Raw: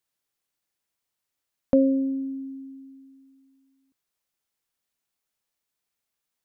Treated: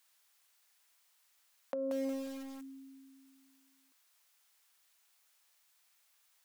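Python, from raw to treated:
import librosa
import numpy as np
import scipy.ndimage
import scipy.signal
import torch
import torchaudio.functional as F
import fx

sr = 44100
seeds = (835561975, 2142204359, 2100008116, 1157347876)

y = fx.over_compress(x, sr, threshold_db=-26.0, ratio=-1.0)
y = scipy.signal.sosfilt(scipy.signal.butter(2, 850.0, 'highpass', fs=sr, output='sos'), y)
y = fx.echo_crushed(y, sr, ms=180, feedback_pct=35, bits=9, wet_db=-5)
y = y * 10.0 ** (8.5 / 20.0)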